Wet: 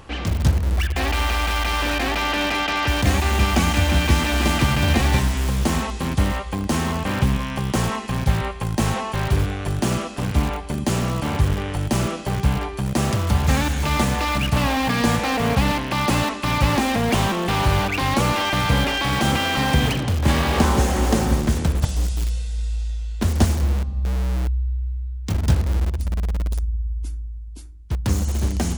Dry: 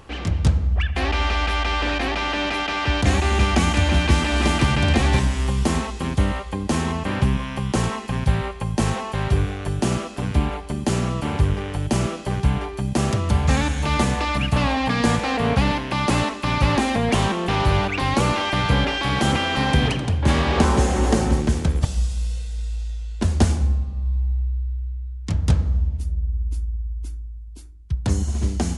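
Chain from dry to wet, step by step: peaking EQ 400 Hz -3 dB 0.32 oct; in parallel at -10 dB: integer overflow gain 19 dB

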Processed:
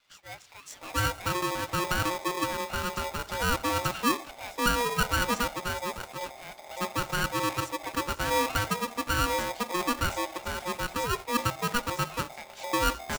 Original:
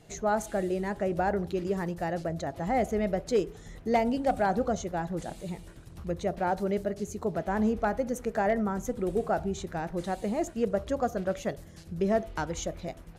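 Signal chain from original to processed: wow and flutter 24 cents; three bands offset in time mids, highs, lows 560/720 ms, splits 1.5/4.8 kHz; polarity switched at an audio rate 720 Hz

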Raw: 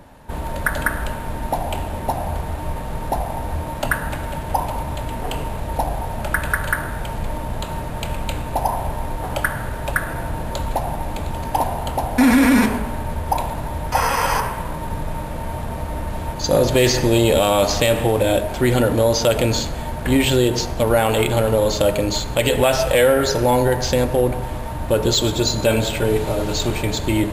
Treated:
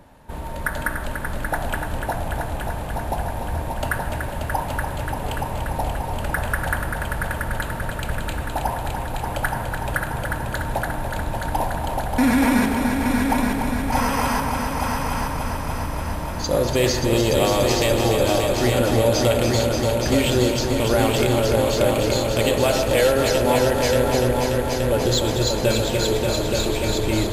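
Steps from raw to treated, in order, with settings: multi-head delay 291 ms, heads all three, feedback 64%, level -8 dB; trim -4.5 dB

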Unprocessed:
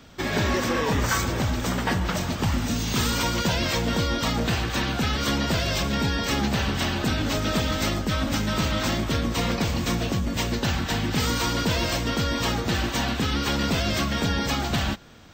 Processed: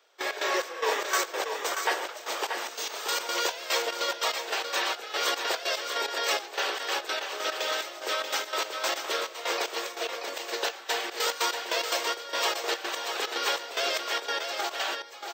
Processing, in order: steep high-pass 390 Hz 48 dB/octave; trance gate "..x.xx..xx.x.x" 146 bpm -12 dB; on a send: delay 634 ms -6.5 dB

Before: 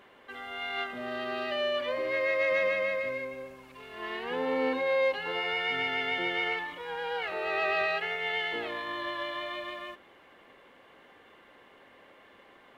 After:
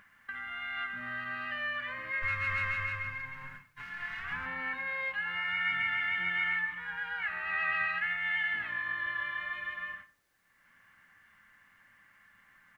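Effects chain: 2.22–4.46 s: comb filter that takes the minimum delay 7 ms; feedback delay 140 ms, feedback 44%, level -17.5 dB; gate -49 dBFS, range -38 dB; FFT filter 180 Hz 0 dB, 420 Hz -30 dB, 1.7 kHz +8 dB, 3.7 kHz -8 dB; upward compressor, threshold -33 dBFS; word length cut 12-bit, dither triangular; treble shelf 2.4 kHz -8 dB; reverberation RT60 0.50 s, pre-delay 4 ms, DRR 9.5 dB

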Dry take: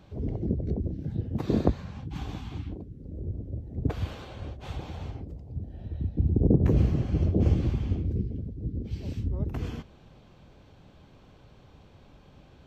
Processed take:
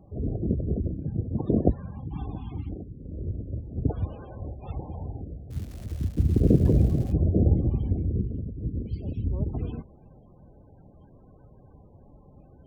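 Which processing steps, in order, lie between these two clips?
loudest bins only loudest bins 32; 5.50–7.11 s: crackle 470 per s -41 dBFS; trim +2 dB

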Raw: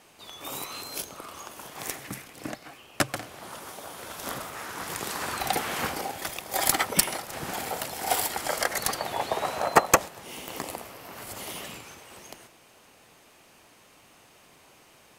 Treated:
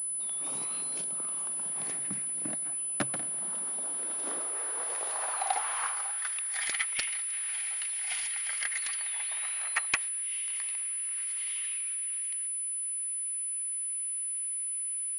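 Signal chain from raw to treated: high-pass sweep 170 Hz -> 2.2 kHz, 3.43–6.80 s; class-D stage that switches slowly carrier 10 kHz; trim -8 dB

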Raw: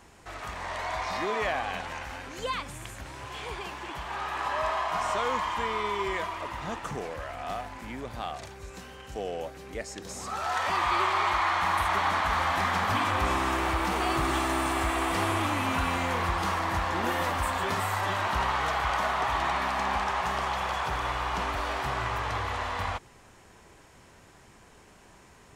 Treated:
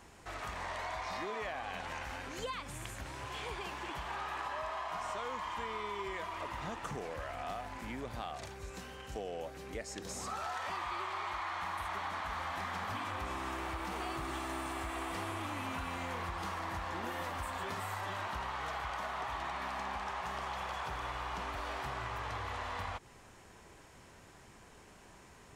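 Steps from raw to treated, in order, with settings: compression, threshold -34 dBFS, peak gain reduction 11.5 dB; trim -2.5 dB

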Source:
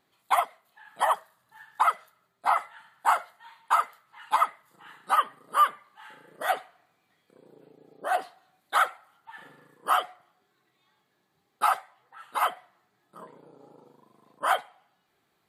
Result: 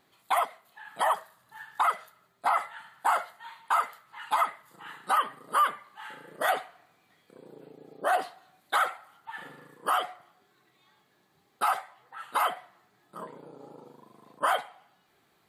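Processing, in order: peak limiter -21 dBFS, peak gain reduction 10 dB; trim +5 dB

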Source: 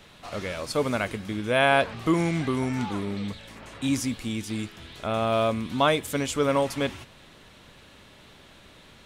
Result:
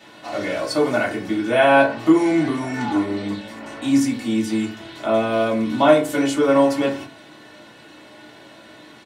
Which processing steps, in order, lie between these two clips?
high-pass 180 Hz 12 dB/octave; treble shelf 5.4 kHz -4.5 dB; comb 2.7 ms, depth 50%; in parallel at -3 dB: compression, threshold -29 dBFS, peak gain reduction 13.5 dB; on the sum: reverberation RT60 0.40 s, pre-delay 3 ms, DRR -6.5 dB; trim -4 dB

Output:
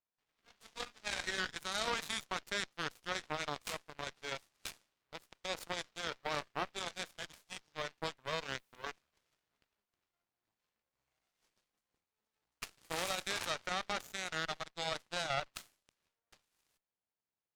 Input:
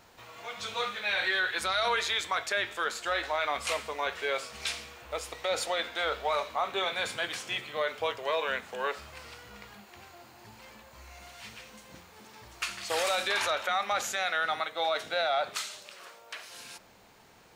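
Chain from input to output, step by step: Chebyshev shaper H 2 -12 dB, 3 -10 dB, 7 -41 dB, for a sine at -18 dBFS; 8.49–8.90 s: added noise white -77 dBFS; trim -3.5 dB

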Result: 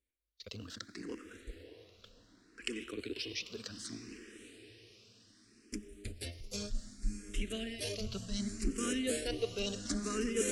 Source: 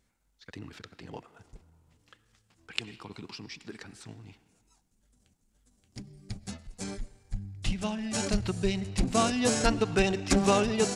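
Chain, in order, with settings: gate -58 dBFS, range -21 dB; reverse; compression 5:1, threshold -35 dBFS, peak gain reduction 15.5 dB; reverse; static phaser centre 340 Hz, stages 4; on a send: echo that smears into a reverb 650 ms, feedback 53%, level -12 dB; on the sum: speed mistake 24 fps film run at 25 fps; barber-pole phaser +0.66 Hz; trim +7.5 dB

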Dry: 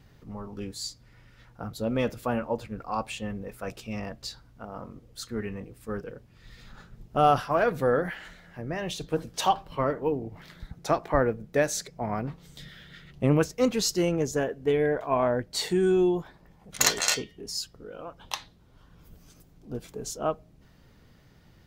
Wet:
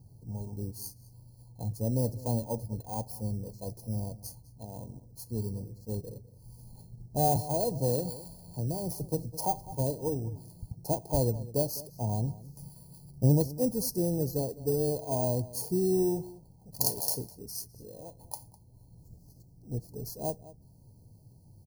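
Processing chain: bit-reversed sample order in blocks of 16 samples; brick-wall FIR band-stop 1–4.1 kHz; peaking EQ 110 Hz +13.5 dB 0.87 oct; echo from a far wall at 35 m, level -18 dB; 7.36–9.75 s: three bands compressed up and down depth 40%; trim -5.5 dB

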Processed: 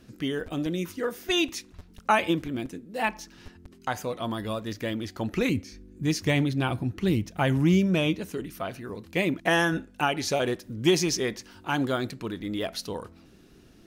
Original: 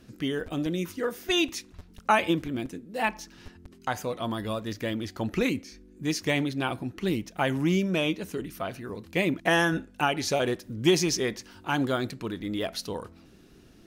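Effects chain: 5.49–8.22 s: peaking EQ 89 Hz +11 dB 1.8 oct

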